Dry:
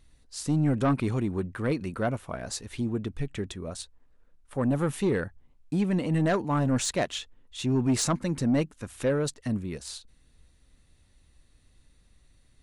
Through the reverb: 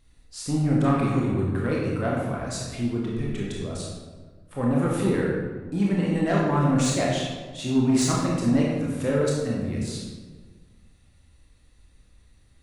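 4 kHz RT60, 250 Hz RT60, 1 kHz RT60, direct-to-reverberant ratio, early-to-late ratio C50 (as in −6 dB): 0.90 s, 1.8 s, 1.3 s, −4.5 dB, 0.0 dB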